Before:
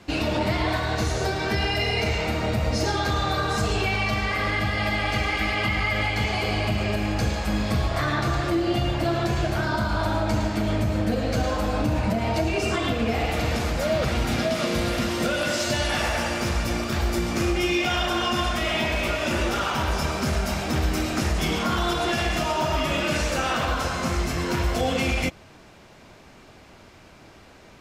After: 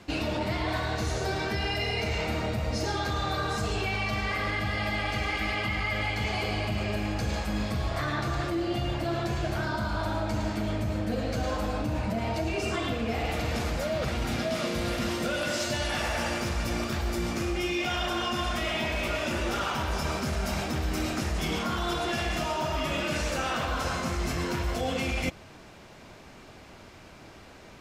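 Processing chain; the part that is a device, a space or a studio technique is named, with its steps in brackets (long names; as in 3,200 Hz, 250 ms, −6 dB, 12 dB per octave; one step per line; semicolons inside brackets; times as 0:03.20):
compression on the reversed sound (reversed playback; downward compressor, threshold −26 dBFS, peak gain reduction 7.5 dB; reversed playback)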